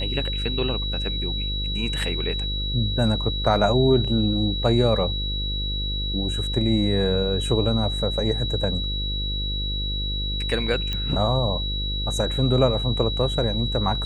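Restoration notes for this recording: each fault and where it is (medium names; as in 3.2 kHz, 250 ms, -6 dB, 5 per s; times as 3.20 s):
buzz 50 Hz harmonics 11 -28 dBFS
whine 3.9 kHz -28 dBFS
10.93 s: pop -14 dBFS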